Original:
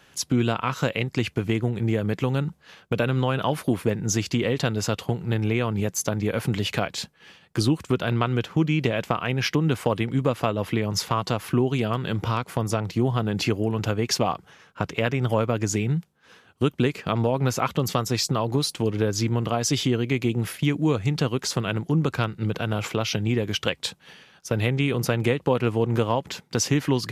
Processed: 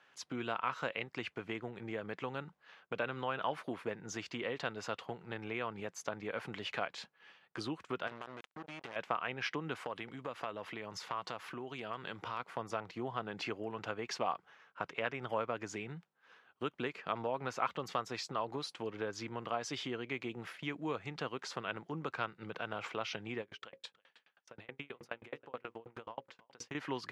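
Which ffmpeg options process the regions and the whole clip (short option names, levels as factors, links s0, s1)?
-filter_complex "[0:a]asettb=1/sr,asplit=3[s0][s1][s2];[s0]atrim=end=8.074[s3];[s1]atrim=start=8.07:end=8.96,asetpts=PTS-STARTPTS,afade=t=in:d=0.004:c=qsin,afade=t=out:st=0.886:d=0.004:c=qsin,acompressor=threshold=0.0355:ratio=4:attack=3.2:release=140:knee=1:detection=peak,acrusher=bits=4:mix=0:aa=0.5[s4];[s2]atrim=start=8.956[s5];[s3][s4]acrossfade=d=0.004:c1=hsin:c2=qsin[s6];[s6][s5]acrossfade=d=0.004:c1=qsin:c2=hsin,asettb=1/sr,asplit=3[s7][s8][s9];[s7]atrim=end=9.754[s10];[s8]atrim=start=9.75:end=12.4,asetpts=PTS-STARTPTS,afade=t=in:d=0.004:c=qsin,afade=t=out:st=2.646:d=0.004:c=qsin,highshelf=f=4100:g=6,acompressor=threshold=0.0708:ratio=3:attack=3.2:release=140:knee=1:detection=peak[s11];[s9]atrim=start=12.396[s12];[s10][s11]acrossfade=d=0.004:c1=hsin:c2=qsin[s13];[s13][s12]acrossfade=d=0.004:c1=qsin:c2=hsin,asettb=1/sr,asplit=3[s14][s15][s16];[s14]atrim=end=23.414[s17];[s15]atrim=start=23.41:end=26.75,asetpts=PTS-STARTPTS,afade=t=in:d=0.004:c=qsin,afade=t=out:st=3.336:d=0.004:c=qsin,bandreject=f=60:t=h:w=6,bandreject=f=120:t=h:w=6,bandreject=f=180:t=h:w=6,bandreject=f=240:t=h:w=6,bandreject=f=300:t=h:w=6,bandreject=f=360:t=h:w=6,bandreject=f=420:t=h:w=6,bandreject=f=480:t=h:w=6,bandreject=f=540:t=h:w=6,aecho=1:1:318:0.075,atrim=end_sample=147294,aeval=exprs='val(0)*pow(10,-35*if(lt(mod(9.4*n/s,1),2*abs(9.4)/1000),1-mod(9.4*n/s,1)/(2*abs(9.4)/1000),(mod(9.4*n/s,1)-2*abs(9.4)/1000)/(1-2*abs(9.4)/1000))/20)':c=same[s18];[s16]atrim=start=26.746[s19];[s17][s18]acrossfade=d=0.004:c1=hsin:c2=qsin[s20];[s20][s19]acrossfade=d=0.004:c1=qsin:c2=hsin,lowpass=1300,aderivative,volume=3.16"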